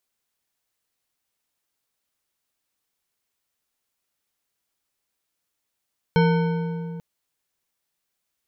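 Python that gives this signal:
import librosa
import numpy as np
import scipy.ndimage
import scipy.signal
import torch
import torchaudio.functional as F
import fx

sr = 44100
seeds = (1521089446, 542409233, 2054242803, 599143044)

y = fx.strike_metal(sr, length_s=0.84, level_db=-15.0, body='bar', hz=168.0, decay_s=2.98, tilt_db=4, modes=8)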